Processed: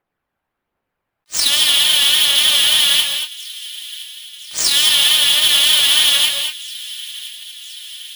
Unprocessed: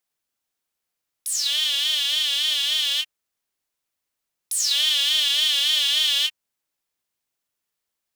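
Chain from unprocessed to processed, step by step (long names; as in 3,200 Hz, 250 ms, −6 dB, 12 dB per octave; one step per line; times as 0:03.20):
high-shelf EQ 3,600 Hz −8 dB
low-pass that shuts in the quiet parts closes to 1,800 Hz, open at −23.5 dBFS
in parallel at −3 dB: compressor whose output falls as the input rises −29 dBFS, ratio −1
on the sum: phase shifter 1.3 Hz, delay 1.4 ms, feedback 34%
sample-rate reduction 14,000 Hz, jitter 0%
on a send: delay with a high-pass on its return 1,018 ms, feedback 65%, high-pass 2,200 Hz, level −18 dB
on the sum: reverb whose tail is shaped and stops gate 250 ms rising, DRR 5 dB
boost into a limiter +8.5 dB
level that may rise only so fast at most 550 dB per second
level −1 dB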